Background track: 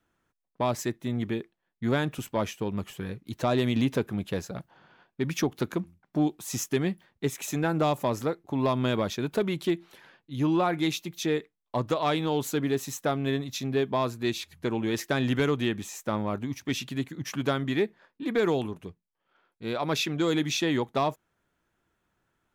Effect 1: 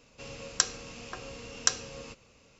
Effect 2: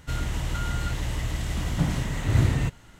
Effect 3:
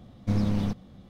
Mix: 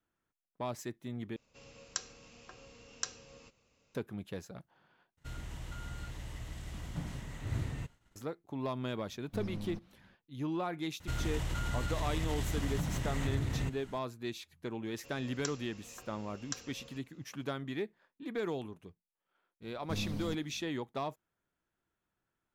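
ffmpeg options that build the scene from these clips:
ffmpeg -i bed.wav -i cue0.wav -i cue1.wav -i cue2.wav -filter_complex "[1:a]asplit=2[link_01][link_02];[2:a]asplit=2[link_03][link_04];[3:a]asplit=2[link_05][link_06];[0:a]volume=-11dB[link_07];[link_03]agate=range=-33dB:threshold=-46dB:ratio=3:release=100:detection=peak[link_08];[link_04]acompressor=threshold=-26dB:ratio=6:attack=3.2:release=140:knee=1:detection=peak[link_09];[link_02]alimiter=limit=-6.5dB:level=0:latency=1:release=71[link_10];[link_06]aexciter=amount=3:drive=3:freq=3500[link_11];[link_07]asplit=3[link_12][link_13][link_14];[link_12]atrim=end=1.364[link_15];[link_01]atrim=end=2.59,asetpts=PTS-STARTPTS,volume=-12dB[link_16];[link_13]atrim=start=3.946:end=5.174[link_17];[link_08]atrim=end=2.99,asetpts=PTS-STARTPTS,volume=-15dB[link_18];[link_14]atrim=start=8.156[link_19];[link_05]atrim=end=1.09,asetpts=PTS-STARTPTS,volume=-15dB,afade=type=in:duration=0.004:curve=hsin,afade=type=out:start_time=1.086:duration=0.004:curve=hsin,adelay=399546S[link_20];[link_09]atrim=end=2.99,asetpts=PTS-STARTPTS,volume=-4dB,afade=type=in:duration=0.004:curve=hsin,afade=type=out:start_time=2.986:duration=0.004:curve=hsin,adelay=11000[link_21];[link_10]atrim=end=2.59,asetpts=PTS-STARTPTS,volume=-12dB,afade=type=in:duration=0.004:curve=hsin,afade=type=out:start_time=2.586:duration=0.004:curve=hsin,adelay=14850[link_22];[link_11]atrim=end=1.09,asetpts=PTS-STARTPTS,volume=-13dB,afade=type=in:duration=0.004:curve=hsin,afade=type=out:start_time=1.086:duration=0.004:curve=hsin,adelay=19620[link_23];[link_15][link_16]acrossfade=duration=0.004:curve1=hsin:curve2=hsin[link_24];[link_24][link_17]acrossfade=duration=0.004:curve1=hsin:curve2=hsin[link_25];[link_25][link_18]acrossfade=duration=0.004:curve1=hsin:curve2=hsin[link_26];[link_26][link_19]acrossfade=duration=0.004:curve1=hsin:curve2=hsin[link_27];[link_27][link_20][link_21][link_22][link_23]amix=inputs=5:normalize=0" out.wav

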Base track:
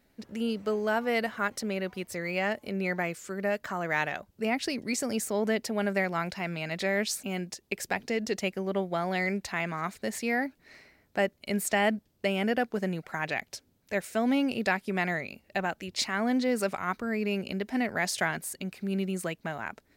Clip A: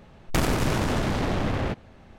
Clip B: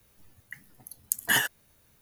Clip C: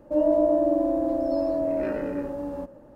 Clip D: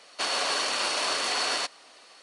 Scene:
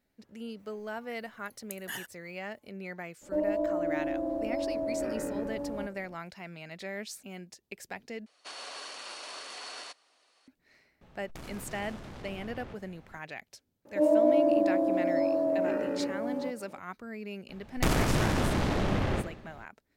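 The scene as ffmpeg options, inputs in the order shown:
ffmpeg -i bed.wav -i cue0.wav -i cue1.wav -i cue2.wav -i cue3.wav -filter_complex "[3:a]asplit=2[link_01][link_02];[1:a]asplit=2[link_03][link_04];[0:a]volume=-10.5dB[link_05];[link_01]acompressor=threshold=-27dB:ratio=2:attack=84:release=848:knee=1:detection=peak[link_06];[4:a]equalizer=frequency=180:width=1.5:gain=-4.5[link_07];[link_03]acompressor=threshold=-40dB:ratio=5:attack=12:release=28:knee=1:detection=peak[link_08];[link_02]highpass=180[link_09];[link_04]aecho=1:1:64|128|192|256|320|384|448:0.251|0.148|0.0874|0.0516|0.0304|0.018|0.0106[link_10];[link_05]asplit=2[link_11][link_12];[link_11]atrim=end=8.264[link_13];[link_07]atrim=end=2.22,asetpts=PTS-STARTPTS,volume=-15dB[link_14];[link_12]atrim=start=10.476[link_15];[2:a]atrim=end=2.01,asetpts=PTS-STARTPTS,volume=-15.5dB,afade=type=in:duration=0.004:curve=hsin,afade=type=out:start_time=2.006:duration=0.004:curve=hsin,adelay=590[link_16];[link_06]atrim=end=2.95,asetpts=PTS-STARTPTS,volume=-4.5dB,afade=type=in:duration=0.02,afade=type=out:start_time=2.93:duration=0.02,adelay=141561S[link_17];[link_08]atrim=end=2.18,asetpts=PTS-STARTPTS,volume=-7dB,afade=type=in:duration=0.004:curve=hsin,afade=type=out:start_time=2.176:duration=0.004:curve=hsin,adelay=11010[link_18];[link_09]atrim=end=2.95,asetpts=PTS-STARTPTS,volume=-2dB,afade=type=in:duration=0.004:curve=hsin,afade=type=out:start_time=2.946:duration=0.004:curve=hsin,adelay=13850[link_19];[link_10]atrim=end=2.18,asetpts=PTS-STARTPTS,volume=-3dB,afade=type=in:duration=0.02,afade=type=out:start_time=2.16:duration=0.02,adelay=770868S[link_20];[link_13][link_14]acrossfade=duration=0.004:curve1=hsin:curve2=hsin[link_21];[link_21][link_15]acrossfade=duration=0.004:curve1=hsin:curve2=hsin[link_22];[link_22][link_16][link_17][link_18][link_19][link_20]amix=inputs=6:normalize=0" out.wav

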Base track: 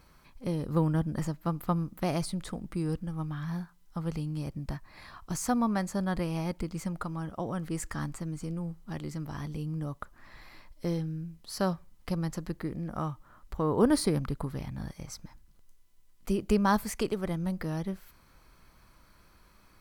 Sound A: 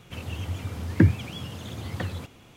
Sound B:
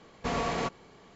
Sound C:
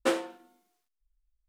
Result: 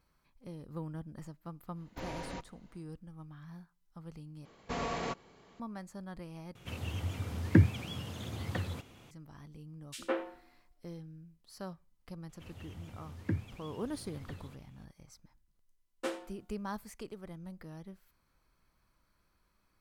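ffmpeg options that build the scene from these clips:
ffmpeg -i bed.wav -i cue0.wav -i cue1.wav -i cue2.wav -filter_complex "[2:a]asplit=2[link_01][link_02];[1:a]asplit=2[link_03][link_04];[3:a]asplit=2[link_05][link_06];[0:a]volume=-14.5dB[link_07];[link_01]afreqshift=-180[link_08];[link_05]acrossover=split=190|2900[link_09][link_10][link_11];[link_09]adelay=60[link_12];[link_10]adelay=160[link_13];[link_12][link_13][link_11]amix=inputs=3:normalize=0[link_14];[link_07]asplit=3[link_15][link_16][link_17];[link_15]atrim=end=4.454[link_18];[link_02]atrim=end=1.15,asetpts=PTS-STARTPTS,volume=-5.5dB[link_19];[link_16]atrim=start=5.596:end=6.554[link_20];[link_03]atrim=end=2.56,asetpts=PTS-STARTPTS,volume=-4.5dB[link_21];[link_17]atrim=start=9.106[link_22];[link_08]atrim=end=1.15,asetpts=PTS-STARTPTS,volume=-11.5dB,afade=type=in:duration=0.1,afade=type=out:start_time=1.05:duration=0.1,adelay=1720[link_23];[link_14]atrim=end=1.48,asetpts=PTS-STARTPTS,volume=-6dB,afade=type=in:duration=0.004:curve=hsin,afade=type=out:start_time=1.476:duration=0.004:curve=hsin,adelay=9870[link_24];[link_04]atrim=end=2.56,asetpts=PTS-STARTPTS,volume=-16dB,afade=type=in:duration=0.004:curve=hsin,afade=type=out:start_time=2.556:duration=0.004:curve=hsin,adelay=12290[link_25];[link_06]atrim=end=1.48,asetpts=PTS-STARTPTS,volume=-10dB,afade=type=in:duration=0.004:curve=hsin,afade=type=out:start_time=1.476:duration=0.004:curve=hsin,adelay=15980[link_26];[link_18][link_19]acrossfade=duration=0.004:curve1=hsin:curve2=hsin[link_27];[link_27][link_20]acrossfade=duration=0.004:curve1=hsin:curve2=hsin[link_28];[link_28][link_21]acrossfade=duration=0.004:curve1=hsin:curve2=hsin[link_29];[link_29][link_22]acrossfade=duration=0.004:curve1=hsin:curve2=hsin[link_30];[link_30][link_23][link_24][link_25][link_26]amix=inputs=5:normalize=0" out.wav

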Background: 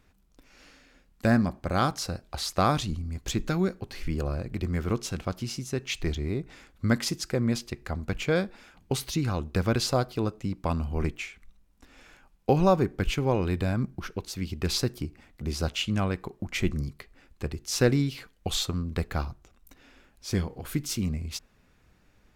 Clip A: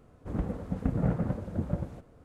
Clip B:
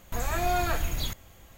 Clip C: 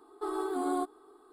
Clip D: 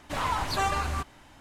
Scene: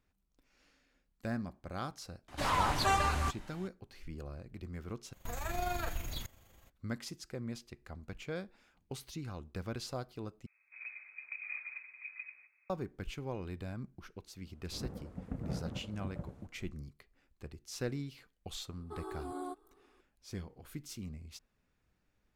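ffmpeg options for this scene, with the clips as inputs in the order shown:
ffmpeg -i bed.wav -i cue0.wav -i cue1.wav -i cue2.wav -i cue3.wav -filter_complex "[1:a]asplit=2[link_01][link_02];[0:a]volume=-15dB[link_03];[2:a]tremolo=f=24:d=0.462[link_04];[link_01]lowpass=frequency=2200:width_type=q:width=0.5098,lowpass=frequency=2200:width_type=q:width=0.6013,lowpass=frequency=2200:width_type=q:width=0.9,lowpass=frequency=2200:width_type=q:width=2.563,afreqshift=-2600[link_05];[link_03]asplit=3[link_06][link_07][link_08];[link_06]atrim=end=5.134[link_09];[link_04]atrim=end=1.57,asetpts=PTS-STARTPTS,volume=-7.5dB[link_10];[link_07]atrim=start=6.696:end=10.464[link_11];[link_05]atrim=end=2.24,asetpts=PTS-STARTPTS,volume=-16dB[link_12];[link_08]atrim=start=12.696[link_13];[4:a]atrim=end=1.4,asetpts=PTS-STARTPTS,volume=-2dB,afade=type=in:duration=0.004:curve=hsin,afade=type=out:start_time=1.396:duration=0.004:curve=hsin,adelay=2280[link_14];[link_02]atrim=end=2.24,asetpts=PTS-STARTPTS,volume=-11.5dB,afade=type=in:duration=0.004:curve=hsin,afade=type=out:start_time=2.236:duration=0.004:curve=hsin,adelay=14460[link_15];[3:a]atrim=end=1.32,asetpts=PTS-STARTPTS,volume=-10.5dB,afade=type=in:duration=0.004:curve=hsin,afade=type=out:start_time=1.316:duration=0.004:curve=hsin,adelay=18690[link_16];[link_09][link_10]acrossfade=duration=0.004:curve1=hsin:curve2=hsin[link_17];[link_17][link_11]acrossfade=duration=0.004:curve1=hsin:curve2=hsin[link_18];[link_18][link_12]acrossfade=duration=0.004:curve1=hsin:curve2=hsin[link_19];[link_19][link_13]acrossfade=duration=0.004:curve1=hsin:curve2=hsin[link_20];[link_20][link_14][link_15][link_16]amix=inputs=4:normalize=0" out.wav

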